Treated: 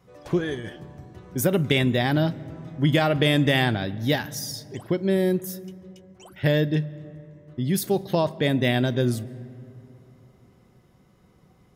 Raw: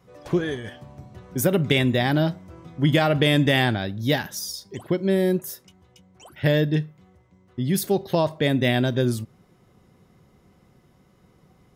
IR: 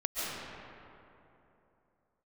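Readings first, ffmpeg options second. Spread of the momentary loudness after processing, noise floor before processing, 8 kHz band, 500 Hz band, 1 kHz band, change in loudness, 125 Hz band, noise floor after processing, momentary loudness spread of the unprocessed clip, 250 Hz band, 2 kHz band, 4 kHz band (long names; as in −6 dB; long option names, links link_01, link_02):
18 LU, −59 dBFS, −1.0 dB, −1.0 dB, −1.0 dB, −1.0 dB, −0.5 dB, −58 dBFS, 16 LU, −1.0 dB, −1.0 dB, −1.0 dB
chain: -filter_complex "[0:a]asplit=2[link_01][link_02];[1:a]atrim=start_sample=2205,lowshelf=frequency=280:gain=11.5[link_03];[link_02][link_03]afir=irnorm=-1:irlink=0,volume=-29dB[link_04];[link_01][link_04]amix=inputs=2:normalize=0,volume=-1.5dB"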